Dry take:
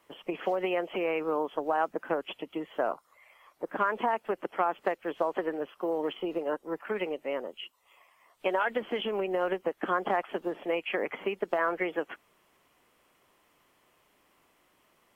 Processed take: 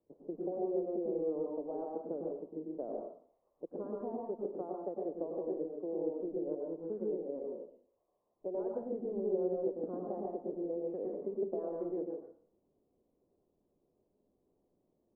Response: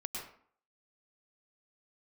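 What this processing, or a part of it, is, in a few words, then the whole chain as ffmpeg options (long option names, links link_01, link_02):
next room: -filter_complex "[0:a]lowpass=frequency=540:width=0.5412,lowpass=frequency=540:width=1.3066[link_01];[1:a]atrim=start_sample=2205[link_02];[link_01][link_02]afir=irnorm=-1:irlink=0,volume=-4dB"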